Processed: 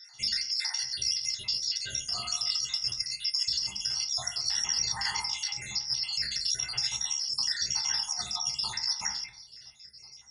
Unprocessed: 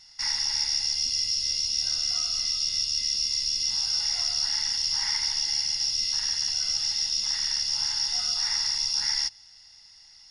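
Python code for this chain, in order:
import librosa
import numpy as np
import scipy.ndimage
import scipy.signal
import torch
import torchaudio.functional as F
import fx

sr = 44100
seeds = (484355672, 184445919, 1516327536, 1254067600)

y = fx.spec_dropout(x, sr, seeds[0], share_pct=64)
y = scipy.signal.sosfilt(scipy.signal.butter(2, 52.0, 'highpass', fs=sr, output='sos'), y)
y = fx.hum_notches(y, sr, base_hz=50, count=3)
y = fx.over_compress(y, sr, threshold_db=-32.0, ratio=-0.5)
y = fx.rev_fdn(y, sr, rt60_s=0.57, lf_ratio=1.2, hf_ratio=0.4, size_ms=45.0, drr_db=1.0)
y = y * librosa.db_to_amplitude(2.0)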